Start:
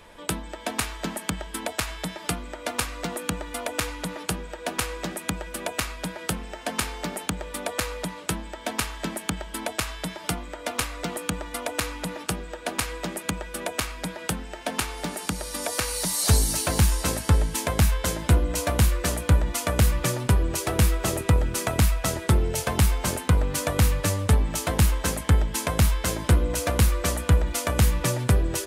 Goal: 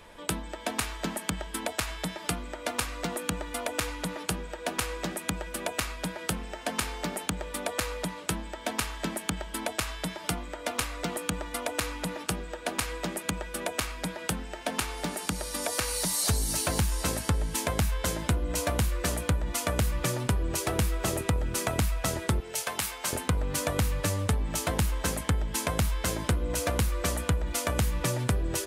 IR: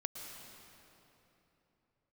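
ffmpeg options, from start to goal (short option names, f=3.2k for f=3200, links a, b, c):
-filter_complex "[0:a]asettb=1/sr,asplit=3[a][b][c];[a]atrim=end=22.404[d];[b]atrim=start=22.4:end=23.13,asetpts=PTS-STARTPTS,afade=t=in:d=0.004:c=qsin,afade=t=out:st=0.726:d=0.004:c=qsin,highpass=f=1.1k:p=1[e];[c]atrim=start=23.126[f];[d][e]acrossfade=d=0.004:c1=hsin:c2=qsin[g];[g][f]acrossfade=d=0.004:c1=qsin:c2=hsin,acompressor=threshold=-22dB:ratio=5,volume=-1.5dB"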